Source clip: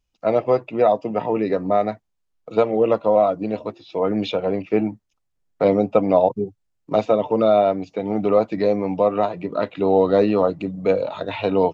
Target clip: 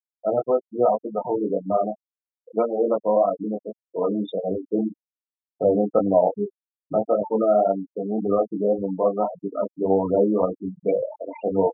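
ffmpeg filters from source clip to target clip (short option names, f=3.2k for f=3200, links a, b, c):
-af "flanger=delay=20:depth=4.8:speed=1.8,afftfilt=real='re*gte(hypot(re,im),0.112)':imag='im*gte(hypot(re,im),0.112)':win_size=1024:overlap=0.75"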